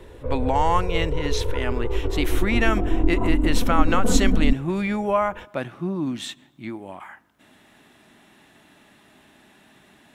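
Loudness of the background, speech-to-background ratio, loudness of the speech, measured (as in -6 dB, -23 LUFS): -26.0 LUFS, 0.0 dB, -26.0 LUFS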